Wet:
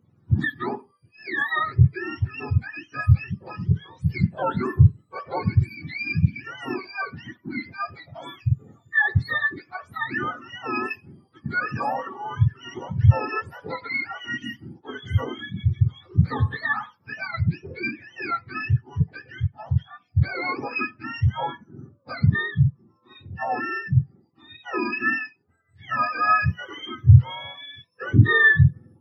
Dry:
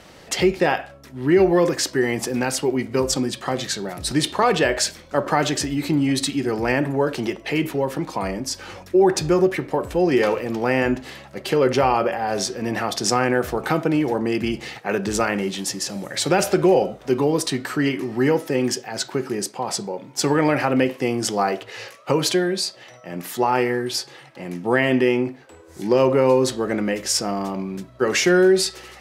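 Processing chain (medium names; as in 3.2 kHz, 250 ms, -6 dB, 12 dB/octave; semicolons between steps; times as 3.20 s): spectrum inverted on a logarithmic axis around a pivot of 810 Hz; spectral contrast expander 1.5:1; trim +2 dB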